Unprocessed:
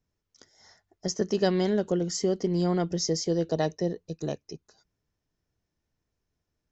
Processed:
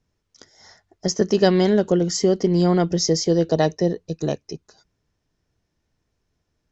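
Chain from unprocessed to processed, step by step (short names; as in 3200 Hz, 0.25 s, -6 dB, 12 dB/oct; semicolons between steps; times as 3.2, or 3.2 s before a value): LPF 8000 Hz; gain +8 dB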